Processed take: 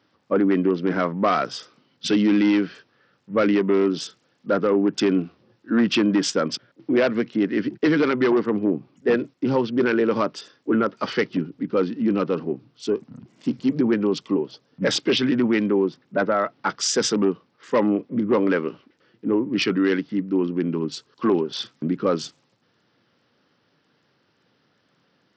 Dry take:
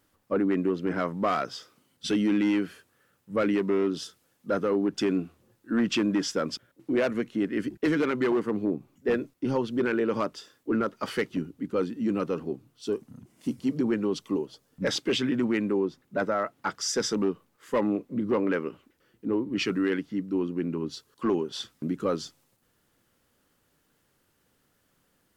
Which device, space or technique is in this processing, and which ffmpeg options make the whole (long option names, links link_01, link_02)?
Bluetooth headset: -af "highpass=frequency=110:width=0.5412,highpass=frequency=110:width=1.3066,aresample=16000,aresample=44100,volume=6dB" -ar 44100 -c:a sbc -b:a 64k